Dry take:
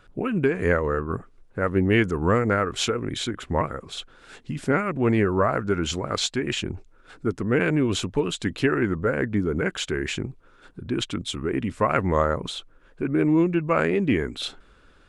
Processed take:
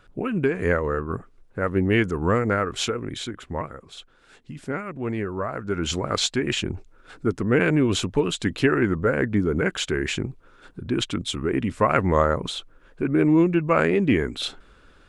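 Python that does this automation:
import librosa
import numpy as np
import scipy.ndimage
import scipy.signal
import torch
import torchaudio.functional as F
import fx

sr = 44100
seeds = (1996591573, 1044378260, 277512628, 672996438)

y = fx.gain(x, sr, db=fx.line((2.76, -0.5), (3.81, -7.0), (5.53, -7.0), (5.93, 2.0)))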